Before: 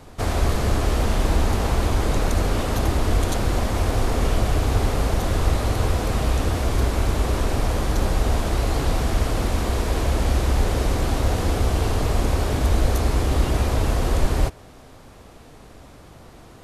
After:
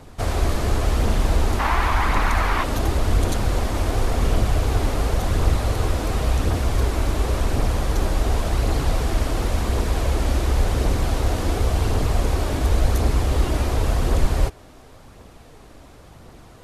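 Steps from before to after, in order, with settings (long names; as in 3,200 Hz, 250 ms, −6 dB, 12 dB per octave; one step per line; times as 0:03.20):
0:01.59–0:02.64: graphic EQ with 10 bands 125 Hz −7 dB, 500 Hz −7 dB, 1,000 Hz +11 dB, 2,000 Hz +9 dB, 8,000 Hz −4 dB
phase shifter 0.92 Hz, delay 3.6 ms, feedback 26%
level −1 dB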